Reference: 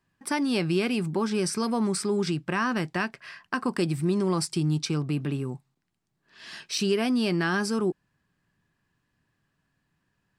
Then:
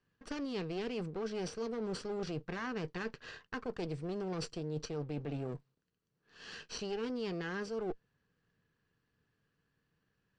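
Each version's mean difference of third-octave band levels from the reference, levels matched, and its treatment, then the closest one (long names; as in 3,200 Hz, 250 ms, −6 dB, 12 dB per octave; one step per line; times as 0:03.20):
6.0 dB: lower of the sound and its delayed copy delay 0.68 ms
low-pass filter 6,300 Hz 24 dB per octave
parametric band 460 Hz +13 dB 0.3 octaves
reversed playback
downward compressor, threshold −31 dBFS, peak gain reduction 12 dB
reversed playback
level −4.5 dB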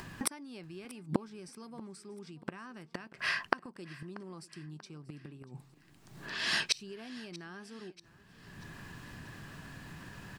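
9.0 dB: high-shelf EQ 7,800 Hz −2 dB
upward compression, threshold −45 dBFS
gate with flip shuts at −23 dBFS, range −33 dB
on a send: repeating echo 637 ms, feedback 47%, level −20 dB
on the sum: level +11.5 dB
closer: first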